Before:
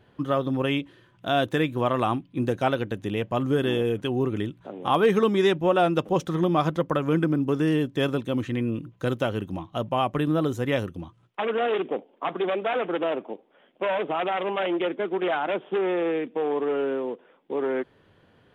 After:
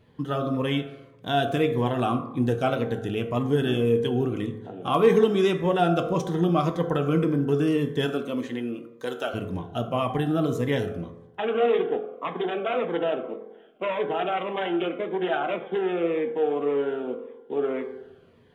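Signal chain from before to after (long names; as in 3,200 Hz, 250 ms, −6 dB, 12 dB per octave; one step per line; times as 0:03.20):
0:08.05–0:09.33: high-pass filter 220 Hz → 540 Hz 12 dB per octave
convolution reverb RT60 1.0 s, pre-delay 3 ms, DRR 5 dB
phaser whose notches keep moving one way falling 1.8 Hz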